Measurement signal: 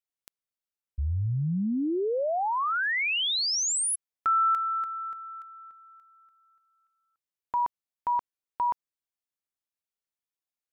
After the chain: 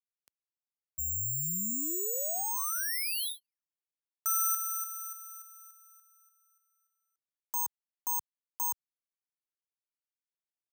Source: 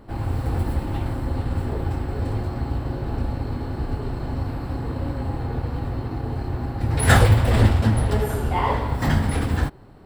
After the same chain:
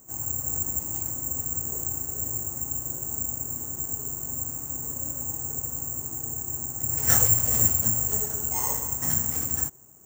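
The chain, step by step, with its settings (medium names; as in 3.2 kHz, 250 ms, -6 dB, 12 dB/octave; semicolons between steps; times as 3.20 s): careless resampling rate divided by 6×, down filtered, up zero stuff; high-pass 75 Hz; trim -13.5 dB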